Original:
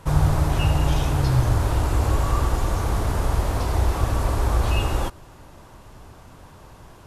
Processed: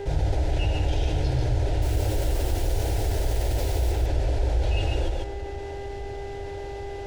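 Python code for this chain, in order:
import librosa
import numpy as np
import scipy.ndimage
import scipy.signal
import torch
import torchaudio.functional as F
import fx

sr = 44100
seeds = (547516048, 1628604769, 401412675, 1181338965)

y = scipy.signal.sosfilt(scipy.signal.butter(2, 4900.0, 'lowpass', fs=sr, output='sos'), x)
y = fx.quant_dither(y, sr, seeds[0], bits=6, dither='none', at=(1.82, 3.92))
y = fx.dmg_buzz(y, sr, base_hz=400.0, harmonics=5, level_db=-41.0, tilt_db=-8, odd_only=False)
y = fx.fixed_phaser(y, sr, hz=470.0, stages=4)
y = y + 10.0 ** (-5.0 / 20.0) * np.pad(y, (int(144 * sr / 1000.0), 0))[:len(y)]
y = fx.rev_plate(y, sr, seeds[1], rt60_s=3.9, hf_ratio=0.5, predelay_ms=0, drr_db=18.5)
y = fx.env_flatten(y, sr, amount_pct=50)
y = F.gain(torch.from_numpy(y), -5.0).numpy()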